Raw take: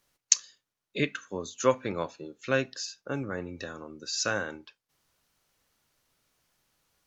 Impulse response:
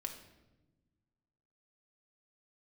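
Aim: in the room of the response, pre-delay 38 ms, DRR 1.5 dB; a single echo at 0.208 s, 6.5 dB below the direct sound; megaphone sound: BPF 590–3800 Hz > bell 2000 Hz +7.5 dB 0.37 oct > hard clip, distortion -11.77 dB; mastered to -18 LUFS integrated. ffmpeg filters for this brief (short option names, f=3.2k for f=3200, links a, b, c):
-filter_complex "[0:a]aecho=1:1:208:0.473,asplit=2[a][b];[1:a]atrim=start_sample=2205,adelay=38[c];[b][c]afir=irnorm=-1:irlink=0,volume=0dB[d];[a][d]amix=inputs=2:normalize=0,highpass=590,lowpass=3.8k,equalizer=f=2k:t=o:w=0.37:g=7.5,asoftclip=type=hard:threshold=-22dB,volume=14.5dB"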